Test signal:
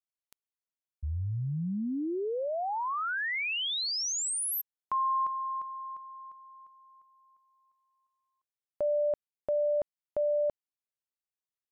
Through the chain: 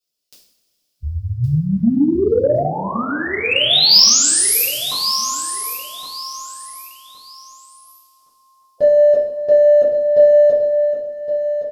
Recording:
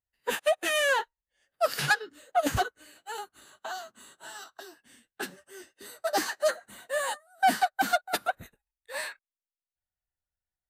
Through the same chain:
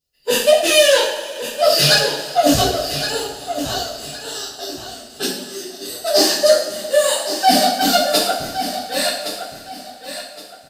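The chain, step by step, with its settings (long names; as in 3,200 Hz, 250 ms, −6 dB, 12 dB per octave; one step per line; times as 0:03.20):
spectral magnitudes quantised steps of 15 dB
flat-topped bell 1,300 Hz −10.5 dB
in parallel at −6.5 dB: hard clipping −29 dBFS
on the sum: thirty-one-band graphic EQ 100 Hz −9 dB, 250 Hz +3 dB, 5,000 Hz +10 dB
coupled-rooms reverb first 0.57 s, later 3.4 s, from −18 dB, DRR −9 dB
soft clipping −4.5 dBFS
repeating echo 1,116 ms, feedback 28%, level −10 dB
level +4.5 dB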